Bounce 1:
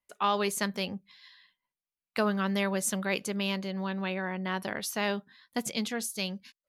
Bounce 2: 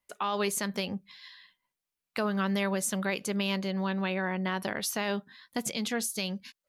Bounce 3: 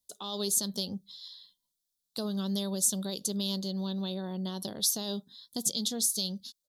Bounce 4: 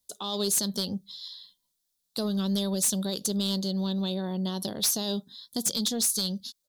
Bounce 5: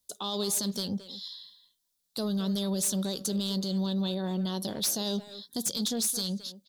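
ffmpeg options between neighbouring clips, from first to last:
ffmpeg -i in.wav -filter_complex "[0:a]asplit=2[link_01][link_02];[link_02]acompressor=threshold=-37dB:ratio=6,volume=-2.5dB[link_03];[link_01][link_03]amix=inputs=2:normalize=0,alimiter=limit=-20dB:level=0:latency=1:release=87" out.wav
ffmpeg -i in.wav -af "firequalizer=gain_entry='entry(200,0);entry(2300,-27);entry(3500,8)':delay=0.05:min_phase=1,volume=-2dB" out.wav
ffmpeg -i in.wav -af "aeval=exprs='0.224*(cos(1*acos(clip(val(0)/0.224,-1,1)))-cos(1*PI/2))+0.1*(cos(5*acos(clip(val(0)/0.224,-1,1)))-cos(5*PI/2))':channel_layout=same,volume=-5dB" out.wav
ffmpeg -i in.wav -filter_complex "[0:a]alimiter=limit=-23.5dB:level=0:latency=1:release=16,asplit=2[link_01][link_02];[link_02]adelay=220,highpass=300,lowpass=3400,asoftclip=type=hard:threshold=-32dB,volume=-10dB[link_03];[link_01][link_03]amix=inputs=2:normalize=0" out.wav

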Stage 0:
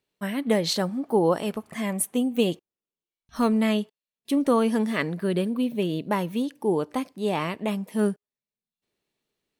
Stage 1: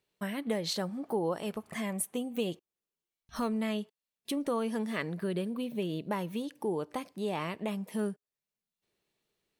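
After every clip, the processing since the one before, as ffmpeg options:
ffmpeg -i in.wav -af "equalizer=frequency=260:width=6.7:gain=-7,acompressor=threshold=-36dB:ratio=2" out.wav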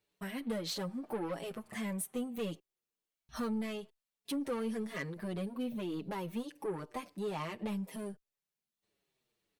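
ffmpeg -i in.wav -filter_complex "[0:a]asoftclip=type=tanh:threshold=-31dB,asplit=2[link_01][link_02];[link_02]adelay=6.4,afreqshift=-1.7[link_03];[link_01][link_03]amix=inputs=2:normalize=1,volume=1.5dB" out.wav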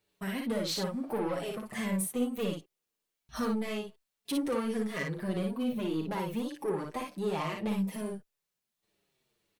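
ffmpeg -i in.wav -af "aecho=1:1:37|57:0.299|0.668,volume=3.5dB" out.wav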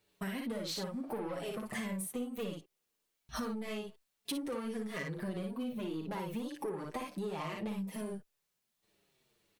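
ffmpeg -i in.wav -af "acompressor=threshold=-39dB:ratio=6,volume=3dB" out.wav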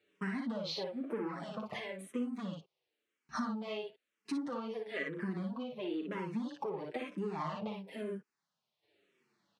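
ffmpeg -i in.wav -filter_complex "[0:a]highpass=160,lowpass=4000,asplit=2[link_01][link_02];[link_02]afreqshift=-1[link_03];[link_01][link_03]amix=inputs=2:normalize=1,volume=4dB" out.wav

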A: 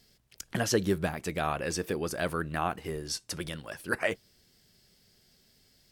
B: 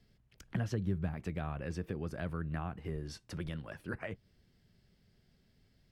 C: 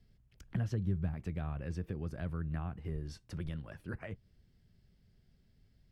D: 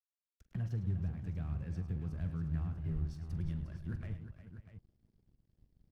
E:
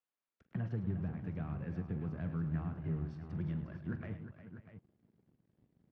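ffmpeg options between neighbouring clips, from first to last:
ffmpeg -i in.wav -filter_complex "[0:a]bass=frequency=250:gain=8,treble=frequency=4000:gain=-14,acrossover=split=170[link_01][link_02];[link_02]acompressor=threshold=-33dB:ratio=5[link_03];[link_01][link_03]amix=inputs=2:normalize=0,volume=-5.5dB" out.wav
ffmpeg -i in.wav -af "lowshelf=frequency=150:gain=10.5,volume=-5dB" out.wav
ffmpeg -i in.wav -af "asubboost=boost=5.5:cutoff=230,aeval=exprs='sgn(val(0))*max(abs(val(0))-0.00282,0)':channel_layout=same,aecho=1:1:43|105|356|545|644:0.211|0.266|0.282|0.1|0.266,volume=-8dB" out.wav
ffmpeg -i in.wav -af "highpass=170,lowpass=2200,volume=6dB" out.wav

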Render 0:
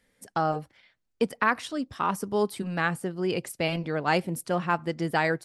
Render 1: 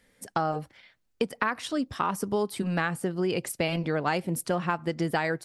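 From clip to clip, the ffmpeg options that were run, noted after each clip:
ffmpeg -i in.wav -af "acompressor=threshold=-28dB:ratio=6,volume=4.5dB" out.wav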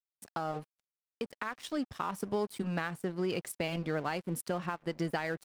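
ffmpeg -i in.wav -af "alimiter=limit=-16.5dB:level=0:latency=1:release=237,aeval=exprs='sgn(val(0))*max(abs(val(0))-0.00631,0)':channel_layout=same,volume=-4.5dB" out.wav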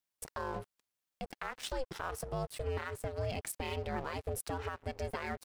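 ffmpeg -i in.wav -af "acompressor=threshold=-39dB:ratio=6,alimiter=level_in=10.5dB:limit=-24dB:level=0:latency=1:release=28,volume=-10.5dB,aeval=exprs='val(0)*sin(2*PI*260*n/s)':channel_layout=same,volume=9.5dB" out.wav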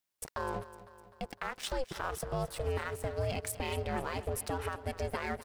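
ffmpeg -i in.wav -af "aecho=1:1:253|506|759|1012|1265|1518:0.168|0.0974|0.0565|0.0328|0.019|0.011,volume=2.5dB" out.wav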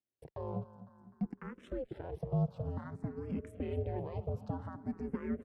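ffmpeg -i in.wav -filter_complex "[0:a]bandpass=frequency=180:width_type=q:width=1.6:csg=0,asplit=2[link_01][link_02];[link_02]afreqshift=0.54[link_03];[link_01][link_03]amix=inputs=2:normalize=1,volume=10.5dB" out.wav

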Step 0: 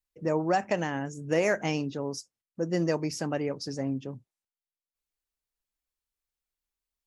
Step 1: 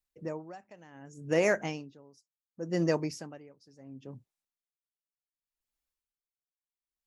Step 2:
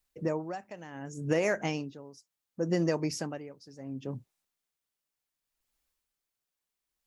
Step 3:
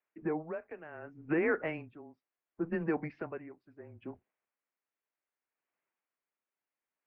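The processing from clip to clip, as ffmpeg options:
ffmpeg -i in.wav -af "aeval=exprs='val(0)*pow(10,-25*(0.5-0.5*cos(2*PI*0.69*n/s))/20)':channel_layout=same" out.wav
ffmpeg -i in.wav -af "acompressor=threshold=-33dB:ratio=5,volume=8dB" out.wav
ffmpeg -i in.wav -af "highpass=frequency=420:width_type=q:width=0.5412,highpass=frequency=420:width_type=q:width=1.307,lowpass=frequency=2600:width_type=q:width=0.5176,lowpass=frequency=2600:width_type=q:width=0.7071,lowpass=frequency=2600:width_type=q:width=1.932,afreqshift=-160" out.wav

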